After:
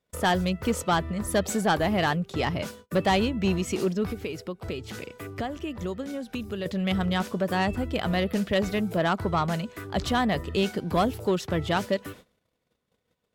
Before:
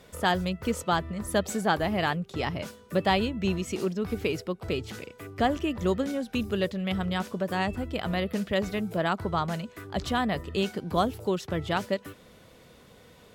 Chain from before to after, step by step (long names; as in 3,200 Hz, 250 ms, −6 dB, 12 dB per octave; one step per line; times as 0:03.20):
noise gate −49 dBFS, range −31 dB
0:04.09–0:06.66: downward compressor 3 to 1, threshold −36 dBFS, peak gain reduction 12.5 dB
soft clipping −19 dBFS, distortion −17 dB
level +4 dB